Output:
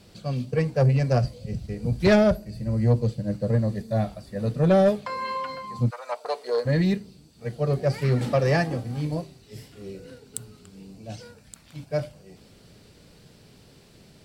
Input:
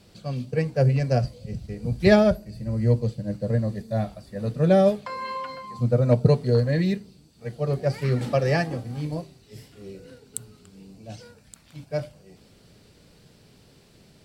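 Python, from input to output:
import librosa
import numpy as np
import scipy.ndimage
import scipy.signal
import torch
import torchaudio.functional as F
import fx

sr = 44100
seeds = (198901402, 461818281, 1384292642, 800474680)

y = 10.0 ** (-14.0 / 20.0) * np.tanh(x / 10.0 ** (-14.0 / 20.0))
y = fx.highpass(y, sr, hz=fx.line((5.89, 1000.0), (6.65, 380.0)), slope=24, at=(5.89, 6.65), fade=0.02)
y = F.gain(torch.from_numpy(y), 2.0).numpy()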